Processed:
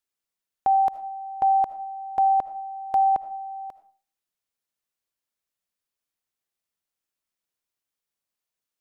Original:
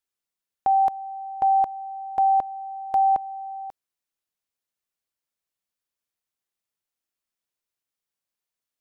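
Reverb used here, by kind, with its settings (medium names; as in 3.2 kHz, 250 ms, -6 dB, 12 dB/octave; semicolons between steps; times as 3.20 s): algorithmic reverb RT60 0.41 s, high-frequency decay 0.55×, pre-delay 35 ms, DRR 13.5 dB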